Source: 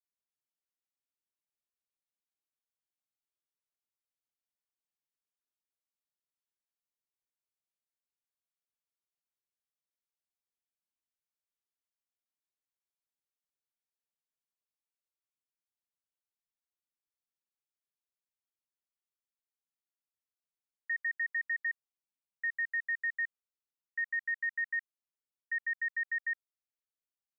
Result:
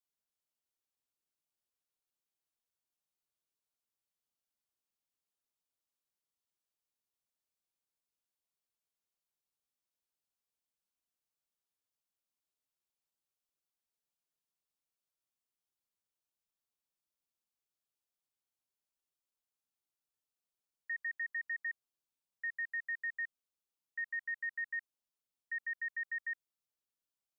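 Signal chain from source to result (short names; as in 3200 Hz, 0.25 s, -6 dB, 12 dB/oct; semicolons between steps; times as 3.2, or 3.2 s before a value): bell 1900 Hz -6 dB 0.67 oct; gain +1 dB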